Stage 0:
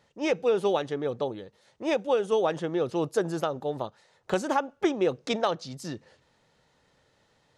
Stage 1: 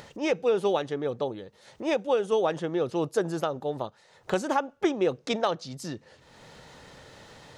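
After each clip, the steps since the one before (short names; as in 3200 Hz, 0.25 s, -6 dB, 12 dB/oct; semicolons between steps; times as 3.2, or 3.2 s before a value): upward compressor, threshold -34 dBFS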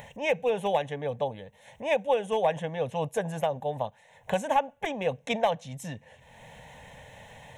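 hard clip -16.5 dBFS, distortion -26 dB; fixed phaser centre 1300 Hz, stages 6; gain +4 dB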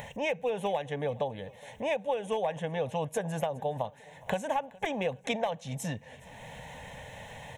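compressor 4:1, threshold -32 dBFS, peak gain reduction 11.5 dB; feedback echo 0.416 s, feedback 49%, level -23 dB; gain +3.5 dB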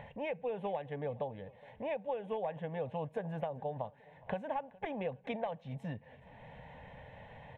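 air absorption 450 m; gain -5 dB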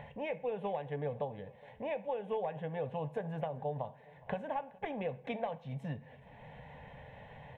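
reverb RT60 0.60 s, pre-delay 3 ms, DRR 11 dB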